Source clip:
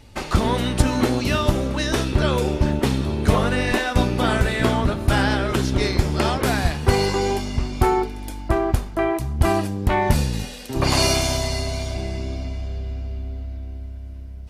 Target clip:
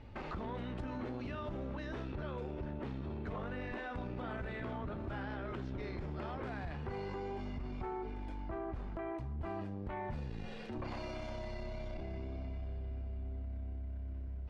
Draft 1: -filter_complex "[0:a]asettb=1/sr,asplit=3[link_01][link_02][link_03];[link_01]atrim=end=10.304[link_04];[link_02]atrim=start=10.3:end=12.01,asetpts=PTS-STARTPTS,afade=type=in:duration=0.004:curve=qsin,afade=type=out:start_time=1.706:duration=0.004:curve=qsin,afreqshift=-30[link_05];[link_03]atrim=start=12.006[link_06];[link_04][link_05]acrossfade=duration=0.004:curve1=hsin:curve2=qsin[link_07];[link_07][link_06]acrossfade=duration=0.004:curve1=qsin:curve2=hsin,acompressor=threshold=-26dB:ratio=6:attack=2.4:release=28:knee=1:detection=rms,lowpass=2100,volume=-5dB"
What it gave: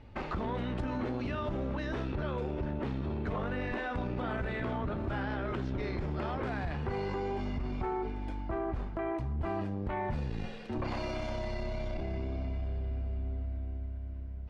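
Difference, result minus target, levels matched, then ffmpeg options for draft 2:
downward compressor: peak gain reduction −6.5 dB
-filter_complex "[0:a]asettb=1/sr,asplit=3[link_01][link_02][link_03];[link_01]atrim=end=10.304[link_04];[link_02]atrim=start=10.3:end=12.01,asetpts=PTS-STARTPTS,afade=type=in:duration=0.004:curve=qsin,afade=type=out:start_time=1.706:duration=0.004:curve=qsin,afreqshift=-30[link_05];[link_03]atrim=start=12.006[link_06];[link_04][link_05]acrossfade=duration=0.004:curve1=hsin:curve2=qsin[link_07];[link_07][link_06]acrossfade=duration=0.004:curve1=qsin:curve2=hsin,acompressor=threshold=-34dB:ratio=6:attack=2.4:release=28:knee=1:detection=rms,lowpass=2100,volume=-5dB"

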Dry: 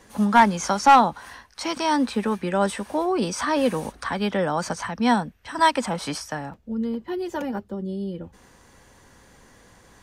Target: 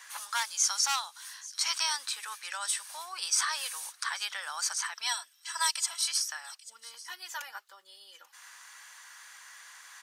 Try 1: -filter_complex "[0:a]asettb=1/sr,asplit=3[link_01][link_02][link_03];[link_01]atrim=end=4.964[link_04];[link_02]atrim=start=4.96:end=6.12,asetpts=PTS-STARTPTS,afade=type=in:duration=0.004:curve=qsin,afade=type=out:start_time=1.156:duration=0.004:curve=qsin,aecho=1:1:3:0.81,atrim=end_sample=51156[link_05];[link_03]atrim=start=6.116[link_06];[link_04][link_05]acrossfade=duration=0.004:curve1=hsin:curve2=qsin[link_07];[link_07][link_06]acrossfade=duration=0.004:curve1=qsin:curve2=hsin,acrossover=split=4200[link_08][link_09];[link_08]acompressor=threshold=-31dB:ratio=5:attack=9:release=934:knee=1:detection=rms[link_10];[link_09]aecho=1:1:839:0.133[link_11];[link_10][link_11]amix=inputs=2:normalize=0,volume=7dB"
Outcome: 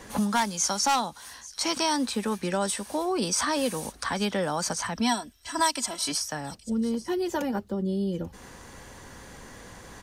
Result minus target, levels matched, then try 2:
1,000 Hz band +5.5 dB
-filter_complex "[0:a]asettb=1/sr,asplit=3[link_01][link_02][link_03];[link_01]atrim=end=4.964[link_04];[link_02]atrim=start=4.96:end=6.12,asetpts=PTS-STARTPTS,afade=type=in:duration=0.004:curve=qsin,afade=type=out:start_time=1.156:duration=0.004:curve=qsin,aecho=1:1:3:0.81,atrim=end_sample=51156[link_05];[link_03]atrim=start=6.116[link_06];[link_04][link_05]acrossfade=duration=0.004:curve1=hsin:curve2=qsin[link_07];[link_07][link_06]acrossfade=duration=0.004:curve1=qsin:curve2=hsin,acrossover=split=4200[link_08][link_09];[link_08]acompressor=threshold=-31dB:ratio=5:attack=9:release=934:knee=1:detection=rms,highpass=frequency=1200:width=0.5412,highpass=frequency=1200:width=1.3066[link_10];[link_09]aecho=1:1:839:0.133[link_11];[link_10][link_11]amix=inputs=2:normalize=0,volume=7dB"

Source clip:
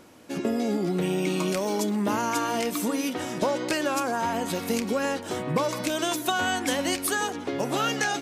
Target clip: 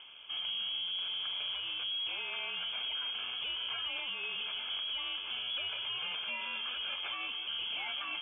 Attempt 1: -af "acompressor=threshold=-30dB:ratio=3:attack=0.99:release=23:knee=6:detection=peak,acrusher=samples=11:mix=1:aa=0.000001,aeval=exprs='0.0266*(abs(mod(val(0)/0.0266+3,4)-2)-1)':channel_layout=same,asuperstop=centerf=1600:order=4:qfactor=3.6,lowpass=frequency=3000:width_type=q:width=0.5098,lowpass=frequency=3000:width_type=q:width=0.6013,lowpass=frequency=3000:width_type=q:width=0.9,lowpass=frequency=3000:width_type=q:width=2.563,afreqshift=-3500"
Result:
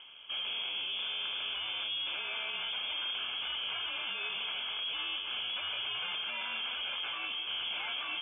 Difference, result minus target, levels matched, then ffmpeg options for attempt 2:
downward compressor: peak gain reduction −4.5 dB
-af "acompressor=threshold=-37dB:ratio=3:attack=0.99:release=23:knee=6:detection=peak,acrusher=samples=11:mix=1:aa=0.000001,aeval=exprs='0.0266*(abs(mod(val(0)/0.0266+3,4)-2)-1)':channel_layout=same,asuperstop=centerf=1600:order=4:qfactor=3.6,lowpass=frequency=3000:width_type=q:width=0.5098,lowpass=frequency=3000:width_type=q:width=0.6013,lowpass=frequency=3000:width_type=q:width=0.9,lowpass=frequency=3000:width_type=q:width=2.563,afreqshift=-3500"

